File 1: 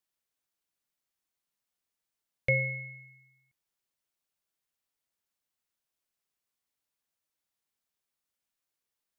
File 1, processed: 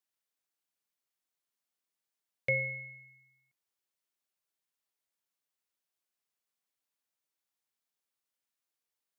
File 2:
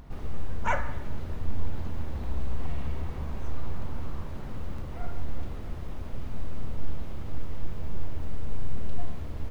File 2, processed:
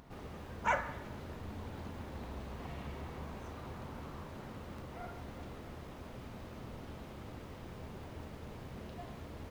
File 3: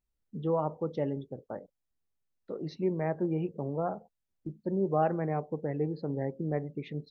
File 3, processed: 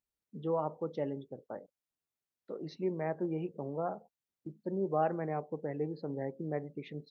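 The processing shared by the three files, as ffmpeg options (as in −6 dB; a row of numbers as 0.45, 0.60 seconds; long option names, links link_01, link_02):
-af "highpass=frequency=210:poles=1,volume=-2.5dB"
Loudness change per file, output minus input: −3.0, −6.5, −4.0 LU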